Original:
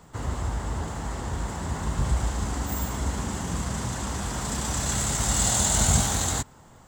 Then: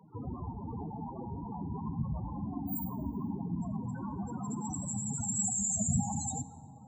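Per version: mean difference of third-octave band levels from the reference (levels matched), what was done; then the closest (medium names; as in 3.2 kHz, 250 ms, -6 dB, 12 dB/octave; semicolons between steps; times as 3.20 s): 18.5 dB: high-pass 150 Hz 12 dB/octave; loudest bins only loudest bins 8; plate-style reverb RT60 3 s, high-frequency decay 0.35×, DRR 11.5 dB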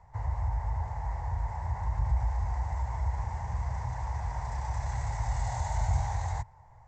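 11.5 dB: FFT filter 110 Hz 0 dB, 250 Hz -30 dB, 910 Hz +2 dB, 1.3 kHz -17 dB, 2 kHz -4 dB, 3.1 kHz -23 dB, 5.8 kHz -8 dB, 15 kHz -22 dB; in parallel at +0.5 dB: peak limiter -24 dBFS, peak gain reduction 11 dB; on the sum: distance through air 150 m; trim -6 dB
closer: second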